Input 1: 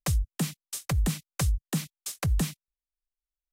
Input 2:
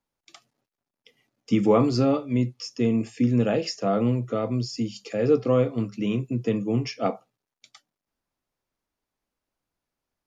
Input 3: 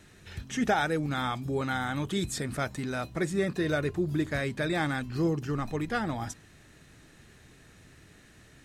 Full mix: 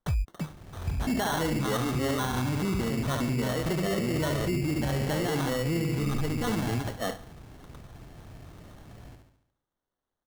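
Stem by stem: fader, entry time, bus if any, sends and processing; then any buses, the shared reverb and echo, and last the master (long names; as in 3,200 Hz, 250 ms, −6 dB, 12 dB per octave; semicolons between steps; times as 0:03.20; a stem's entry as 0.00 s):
−5.0 dB, 0.00 s, no send, no echo send, automatic ducking −18 dB, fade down 1.80 s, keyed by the second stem
−2.5 dB, 0.00 s, no send, echo send −22 dB, low-shelf EQ 220 Hz −10 dB
+2.5 dB, 0.50 s, no send, echo send −6 dB, no processing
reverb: not used
echo: repeating echo 71 ms, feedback 51%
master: low-shelf EQ 150 Hz +10 dB; decimation without filtering 18×; brickwall limiter −21.5 dBFS, peak gain reduction 12.5 dB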